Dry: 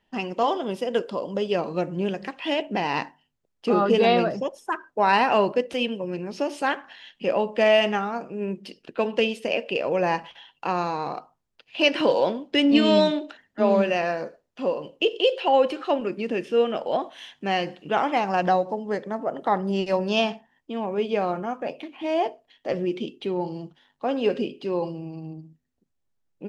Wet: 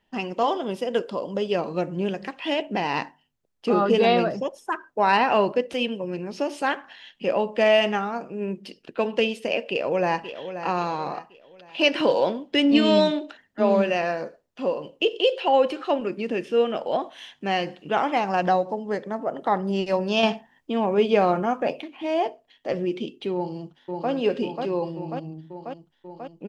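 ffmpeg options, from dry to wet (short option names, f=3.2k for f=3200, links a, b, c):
-filter_complex "[0:a]asettb=1/sr,asplit=3[a][b][c];[a]atrim=end=5.174[d];[b]atrim=start=5.17:end=5.68,asetpts=PTS-STARTPTS,afade=t=in:d=0.004:c=qsin,afade=t=out:st=0.506:d=0.004:c=qsin,acrossover=split=5100[e][f];[f]acompressor=threshold=-55dB:ratio=4:attack=1:release=60[g];[e][g]amix=inputs=2:normalize=0[h];[c]atrim=start=5.676[i];[d][h]acrossfade=d=0.004:c1=hsin:c2=qsin[j];[j][i]acrossfade=d=0.004:c1=qsin:c2=hsin,asplit=2[k][l];[l]afade=t=in:st=9.7:d=0.01,afade=t=out:st=10.65:d=0.01,aecho=0:1:530|1060|1590|2120:0.298538|0.119415|0.0477661|0.0191064[m];[k][m]amix=inputs=2:normalize=0,asettb=1/sr,asplit=3[n][o][p];[n]atrim=end=20.234[q];[o]atrim=start=20.23:end=21.81,asetpts=PTS-STARTPTS,afade=t=in:d=0.004:c=qsin,afade=t=out:st=1.576:d=0.004:c=qsin,acontrast=39[r];[p]atrim=start=21.806[s];[q][r]acrossfade=d=0.004:c1=hsin:c2=qsin[t];[t][s]acrossfade=d=0.004:c1=qsin:c2=hsin,asplit=2[u][v];[v]afade=t=in:st=23.34:d=0.01,afade=t=out:st=24.11:d=0.01,aecho=0:1:540|1080|1620|2160|2700|3240|3780|4320|4860|5400|5940|6480:0.630957|0.473218|0.354914|0.266185|0.199639|0.149729|0.112297|0.0842226|0.063167|0.0473752|0.0355314|0.0266486[w];[u][w]amix=inputs=2:normalize=0"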